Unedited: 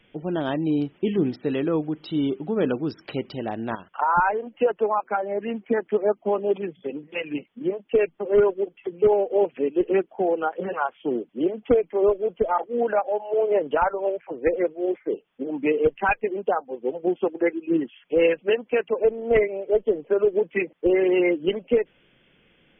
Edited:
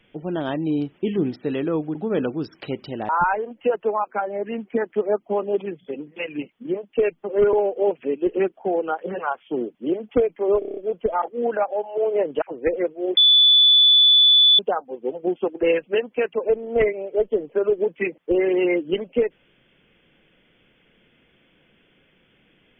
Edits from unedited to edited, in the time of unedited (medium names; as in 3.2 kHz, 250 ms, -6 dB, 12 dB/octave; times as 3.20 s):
1.95–2.41 s: delete
3.55–4.05 s: delete
8.49–9.07 s: delete
12.13 s: stutter 0.03 s, 7 plays
13.78–14.22 s: delete
14.97–16.39 s: bleep 3.47 kHz -10.5 dBFS
17.43–18.18 s: delete